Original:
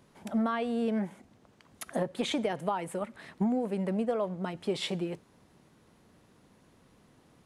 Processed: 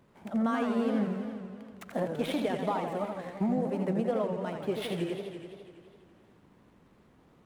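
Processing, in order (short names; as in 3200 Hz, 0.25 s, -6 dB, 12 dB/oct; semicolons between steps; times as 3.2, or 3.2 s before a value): median filter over 9 samples; warbling echo 84 ms, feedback 77%, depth 197 cents, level -6.5 dB; gain -1 dB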